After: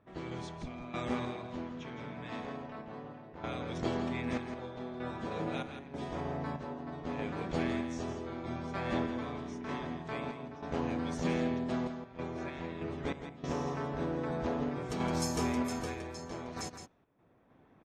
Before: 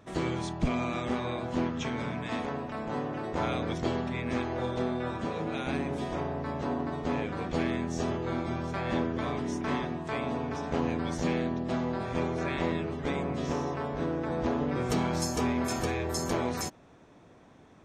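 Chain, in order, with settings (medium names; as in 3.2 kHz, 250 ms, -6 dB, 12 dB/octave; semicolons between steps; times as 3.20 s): random-step tremolo 3.2 Hz, depth 85%; level-controlled noise filter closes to 2.4 kHz, open at -29 dBFS; delay 166 ms -8.5 dB; trim -3 dB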